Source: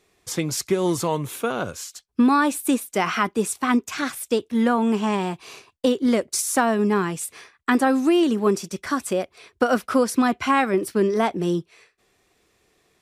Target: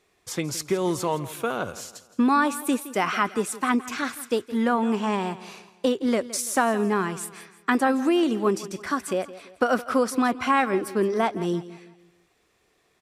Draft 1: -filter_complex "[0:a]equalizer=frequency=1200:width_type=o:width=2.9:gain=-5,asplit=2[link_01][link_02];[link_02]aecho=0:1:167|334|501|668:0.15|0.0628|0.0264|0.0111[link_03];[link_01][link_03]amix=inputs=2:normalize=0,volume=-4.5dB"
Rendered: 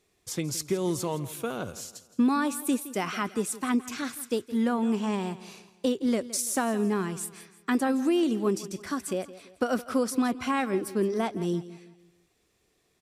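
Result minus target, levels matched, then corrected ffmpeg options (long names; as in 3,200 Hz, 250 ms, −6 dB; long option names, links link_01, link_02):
1,000 Hz band −4.0 dB
-filter_complex "[0:a]equalizer=frequency=1200:width_type=o:width=2.9:gain=3.5,asplit=2[link_01][link_02];[link_02]aecho=0:1:167|334|501|668:0.15|0.0628|0.0264|0.0111[link_03];[link_01][link_03]amix=inputs=2:normalize=0,volume=-4.5dB"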